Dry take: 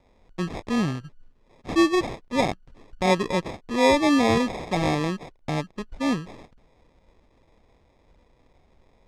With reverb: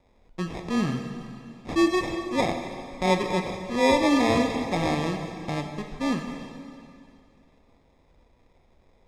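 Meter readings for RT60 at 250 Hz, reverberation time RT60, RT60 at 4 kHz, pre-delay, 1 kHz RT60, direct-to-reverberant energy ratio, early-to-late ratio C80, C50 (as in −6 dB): 2.4 s, 2.5 s, 2.3 s, 8 ms, 2.5 s, 4.5 dB, 6.5 dB, 6.0 dB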